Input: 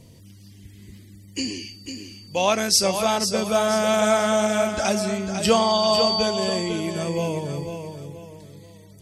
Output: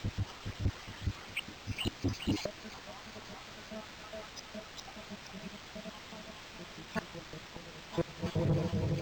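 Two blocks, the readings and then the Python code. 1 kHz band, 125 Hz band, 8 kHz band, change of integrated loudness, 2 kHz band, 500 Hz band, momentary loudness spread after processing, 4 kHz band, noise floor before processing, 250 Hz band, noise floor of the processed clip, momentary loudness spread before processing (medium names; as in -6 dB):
-21.5 dB, -4.0 dB, -23.5 dB, -18.0 dB, -14.0 dB, -21.0 dB, 13 LU, -18.0 dB, -47 dBFS, -13.0 dB, -50 dBFS, 17 LU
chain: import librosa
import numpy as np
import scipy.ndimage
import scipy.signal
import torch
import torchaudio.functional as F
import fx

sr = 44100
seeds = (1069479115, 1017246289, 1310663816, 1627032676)

p1 = fx.spec_dropout(x, sr, seeds[0], share_pct=83)
p2 = fx.echo_feedback(p1, sr, ms=415, feedback_pct=44, wet_db=-6.0)
p3 = fx.gate_flip(p2, sr, shuts_db=-29.0, range_db=-34)
p4 = fx.high_shelf(p3, sr, hz=8600.0, db=9.5)
p5 = fx.quant_dither(p4, sr, seeds[1], bits=8, dither='triangular')
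p6 = p4 + (p5 * 10.0 ** (-7.5 / 20.0))
p7 = fx.low_shelf(p6, sr, hz=250.0, db=11.0)
p8 = fx.notch(p7, sr, hz=4600.0, q=12.0)
p9 = 10.0 ** (-31.5 / 20.0) * np.tanh(p8 / 10.0 ** (-31.5 / 20.0))
p10 = np.interp(np.arange(len(p9)), np.arange(len(p9))[::4], p9[::4])
y = p10 * 10.0 ** (7.0 / 20.0)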